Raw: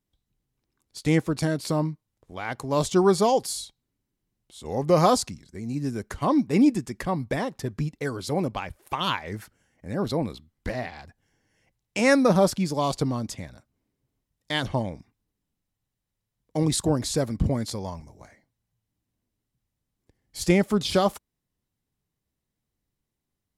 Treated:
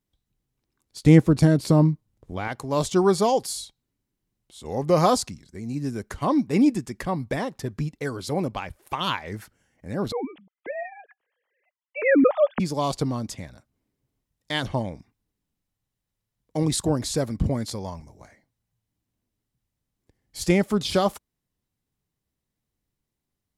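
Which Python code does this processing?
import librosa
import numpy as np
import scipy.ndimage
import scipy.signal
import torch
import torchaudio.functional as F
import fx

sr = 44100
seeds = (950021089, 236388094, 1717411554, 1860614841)

y = fx.low_shelf(x, sr, hz=480.0, db=10.5, at=(1.03, 2.48))
y = fx.sine_speech(y, sr, at=(10.12, 12.6))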